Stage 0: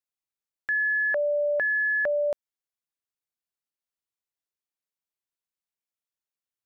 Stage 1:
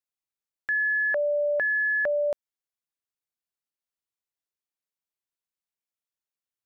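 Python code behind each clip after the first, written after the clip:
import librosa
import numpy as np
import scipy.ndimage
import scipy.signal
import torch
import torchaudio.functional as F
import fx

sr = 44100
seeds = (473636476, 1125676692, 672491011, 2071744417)

y = x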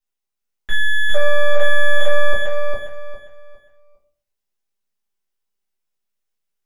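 y = np.where(x < 0.0, 10.0 ** (-12.0 / 20.0) * x, x)
y = fx.echo_feedback(y, sr, ms=405, feedback_pct=28, wet_db=-3)
y = fx.room_shoebox(y, sr, seeds[0], volume_m3=42.0, walls='mixed', distance_m=1.5)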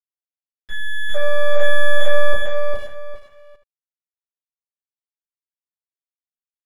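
y = fx.fade_in_head(x, sr, length_s=1.73)
y = np.sign(y) * np.maximum(np.abs(y) - 10.0 ** (-38.0 / 20.0), 0.0)
y = y + 10.0 ** (-11.5 / 20.0) * np.pad(y, (int(77 * sr / 1000.0), 0))[:len(y)]
y = F.gain(torch.from_numpy(y), -1.0).numpy()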